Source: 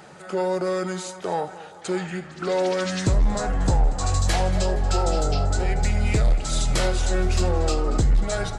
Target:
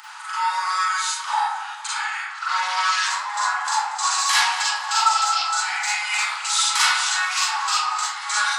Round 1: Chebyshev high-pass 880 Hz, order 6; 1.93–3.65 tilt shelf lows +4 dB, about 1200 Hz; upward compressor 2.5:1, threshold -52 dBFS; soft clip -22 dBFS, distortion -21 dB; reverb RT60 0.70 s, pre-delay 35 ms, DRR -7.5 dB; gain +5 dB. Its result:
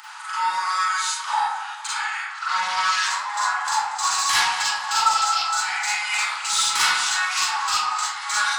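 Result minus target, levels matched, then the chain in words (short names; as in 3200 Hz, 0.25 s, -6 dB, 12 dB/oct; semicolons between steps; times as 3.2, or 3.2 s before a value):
soft clip: distortion +12 dB
Chebyshev high-pass 880 Hz, order 6; 1.93–3.65 tilt shelf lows +4 dB, about 1200 Hz; upward compressor 2.5:1, threshold -52 dBFS; soft clip -14.5 dBFS, distortion -32 dB; reverb RT60 0.70 s, pre-delay 35 ms, DRR -7.5 dB; gain +5 dB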